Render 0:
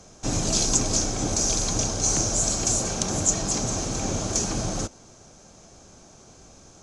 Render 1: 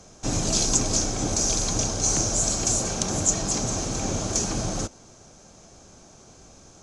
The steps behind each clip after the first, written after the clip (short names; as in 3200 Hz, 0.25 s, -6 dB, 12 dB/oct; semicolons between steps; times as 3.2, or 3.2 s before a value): nothing audible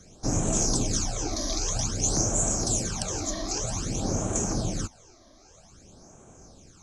phaser stages 12, 0.52 Hz, lowest notch 140–4600 Hz; gain -1 dB